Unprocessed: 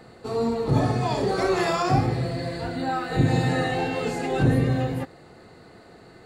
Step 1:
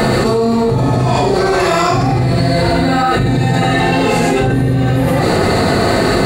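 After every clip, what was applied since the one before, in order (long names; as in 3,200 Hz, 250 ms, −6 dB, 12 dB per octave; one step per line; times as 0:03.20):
high-shelf EQ 9,700 Hz +5.5 dB
convolution reverb, pre-delay 3 ms, DRR −6 dB
envelope flattener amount 100%
level −3.5 dB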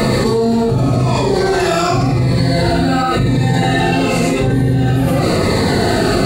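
phaser whose notches keep moving one way falling 0.93 Hz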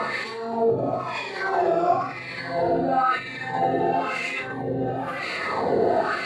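LFO wah 0.99 Hz 490–2,300 Hz, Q 2.4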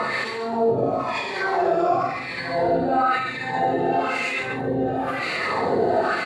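in parallel at +0.5 dB: brickwall limiter −19 dBFS, peak gain reduction 8.5 dB
on the sum: single-tap delay 139 ms −8 dB
level −3.5 dB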